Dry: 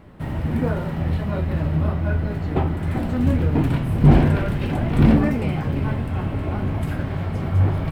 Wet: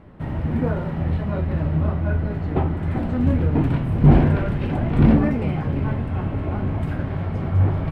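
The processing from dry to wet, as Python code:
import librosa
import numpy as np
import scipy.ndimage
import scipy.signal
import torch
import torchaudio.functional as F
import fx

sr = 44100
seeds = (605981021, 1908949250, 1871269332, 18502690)

y = fx.lowpass(x, sr, hz=2200.0, slope=6)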